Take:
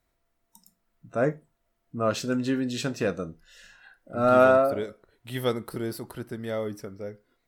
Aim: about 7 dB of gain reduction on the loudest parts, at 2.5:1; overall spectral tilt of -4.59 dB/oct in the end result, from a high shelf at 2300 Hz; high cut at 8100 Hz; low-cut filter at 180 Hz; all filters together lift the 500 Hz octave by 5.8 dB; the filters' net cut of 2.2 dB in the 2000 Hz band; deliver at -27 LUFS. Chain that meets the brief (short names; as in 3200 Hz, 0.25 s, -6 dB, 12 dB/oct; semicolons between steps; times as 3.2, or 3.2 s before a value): HPF 180 Hz; LPF 8100 Hz; bell 500 Hz +7.5 dB; bell 2000 Hz -8.5 dB; high shelf 2300 Hz +7.5 dB; compressor 2.5:1, threshold -20 dBFS